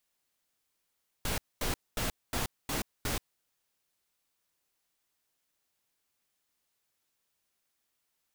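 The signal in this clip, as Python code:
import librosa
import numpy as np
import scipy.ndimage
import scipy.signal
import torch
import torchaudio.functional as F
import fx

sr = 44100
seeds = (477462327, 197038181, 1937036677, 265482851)

y = fx.noise_burst(sr, seeds[0], colour='pink', on_s=0.13, off_s=0.23, bursts=6, level_db=-32.0)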